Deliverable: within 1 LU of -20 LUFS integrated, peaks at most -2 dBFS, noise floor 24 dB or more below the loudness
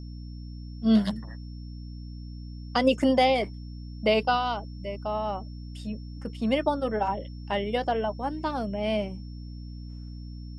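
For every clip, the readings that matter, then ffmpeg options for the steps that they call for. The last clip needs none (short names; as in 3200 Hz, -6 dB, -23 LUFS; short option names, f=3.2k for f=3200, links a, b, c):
hum 60 Hz; harmonics up to 300 Hz; hum level -37 dBFS; steady tone 5400 Hz; tone level -56 dBFS; loudness -27.5 LUFS; peak -10.5 dBFS; loudness target -20.0 LUFS
-> -af "bandreject=f=60:t=h:w=6,bandreject=f=120:t=h:w=6,bandreject=f=180:t=h:w=6,bandreject=f=240:t=h:w=6,bandreject=f=300:t=h:w=6"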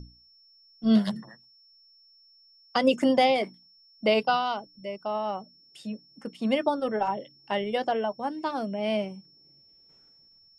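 hum none; steady tone 5400 Hz; tone level -56 dBFS
-> -af "bandreject=f=5.4k:w=30"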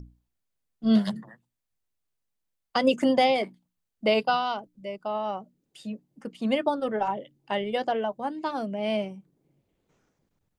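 steady tone none; loudness -27.0 LUFS; peak -10.5 dBFS; loudness target -20.0 LUFS
-> -af "volume=7dB"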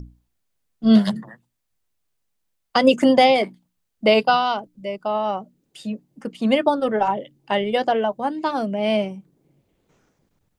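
loudness -20.5 LUFS; peak -3.5 dBFS; noise floor -75 dBFS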